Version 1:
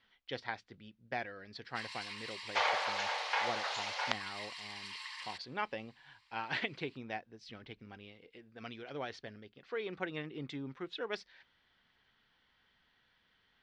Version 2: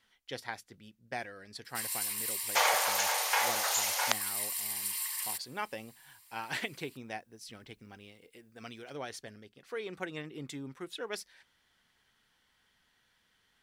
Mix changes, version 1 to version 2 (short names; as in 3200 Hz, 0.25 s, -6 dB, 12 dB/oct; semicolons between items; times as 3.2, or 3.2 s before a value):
second sound +4.0 dB; master: remove LPF 4400 Hz 24 dB/oct